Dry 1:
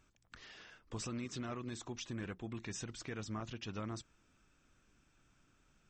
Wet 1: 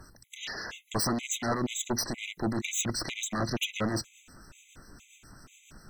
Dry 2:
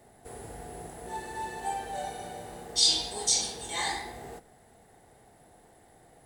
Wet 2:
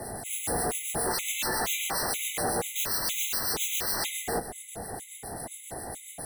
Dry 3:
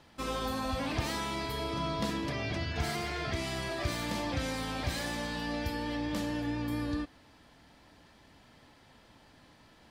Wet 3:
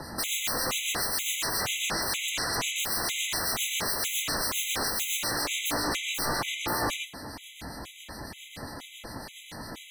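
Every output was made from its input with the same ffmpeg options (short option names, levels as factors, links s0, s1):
-filter_complex "[0:a]equalizer=f=12000:t=o:w=1.1:g=11.5,acrossover=split=150[s0][s1];[s0]acompressor=threshold=0.00178:ratio=6[s2];[s2][s1]amix=inputs=2:normalize=0,aeval=exprs='0.106*sin(PI/2*10*val(0)/0.106)':c=same,acrossover=split=1800[s3][s4];[s3]aeval=exprs='val(0)*(1-0.5/2+0.5/2*cos(2*PI*7.3*n/s))':c=same[s5];[s4]aeval=exprs='val(0)*(1-0.5/2-0.5/2*cos(2*PI*7.3*n/s))':c=same[s6];[s5][s6]amix=inputs=2:normalize=0,afftfilt=real='re*gt(sin(2*PI*2.1*pts/sr)*(1-2*mod(floor(b*sr/1024/2000),2)),0)':imag='im*gt(sin(2*PI*2.1*pts/sr)*(1-2*mod(floor(b*sr/1024/2000),2)),0)':win_size=1024:overlap=0.75,volume=0.794"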